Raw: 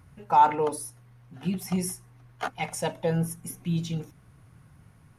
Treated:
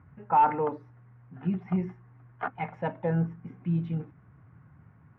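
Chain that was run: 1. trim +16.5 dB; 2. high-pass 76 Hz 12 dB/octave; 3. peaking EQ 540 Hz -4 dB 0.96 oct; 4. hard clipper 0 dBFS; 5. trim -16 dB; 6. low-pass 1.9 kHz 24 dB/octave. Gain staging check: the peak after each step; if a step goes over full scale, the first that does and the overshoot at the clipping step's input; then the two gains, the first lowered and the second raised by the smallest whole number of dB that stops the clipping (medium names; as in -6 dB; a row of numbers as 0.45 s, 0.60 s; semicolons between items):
+8.5 dBFS, +8.5 dBFS, +7.5 dBFS, 0.0 dBFS, -16.0 dBFS, -14.5 dBFS; step 1, 7.5 dB; step 1 +8.5 dB, step 5 -8 dB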